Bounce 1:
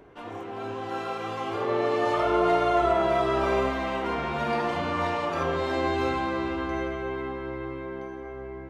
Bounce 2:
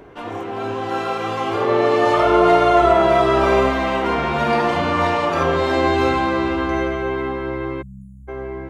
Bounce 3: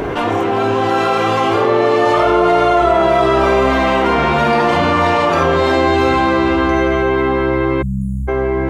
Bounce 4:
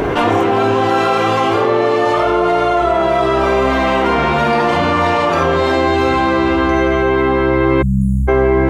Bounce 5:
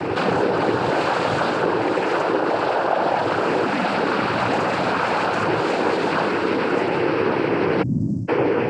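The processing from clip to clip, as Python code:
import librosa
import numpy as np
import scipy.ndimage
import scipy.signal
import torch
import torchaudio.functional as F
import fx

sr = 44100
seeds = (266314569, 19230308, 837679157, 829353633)

y1 = fx.spec_erase(x, sr, start_s=7.82, length_s=0.46, low_hz=240.0, high_hz=6600.0)
y1 = F.gain(torch.from_numpy(y1), 9.0).numpy()
y2 = fx.env_flatten(y1, sr, amount_pct=70)
y3 = fx.rider(y2, sr, range_db=10, speed_s=0.5)
y4 = fx.noise_vocoder(y3, sr, seeds[0], bands=8)
y4 = F.gain(torch.from_numpy(y4), -6.0).numpy()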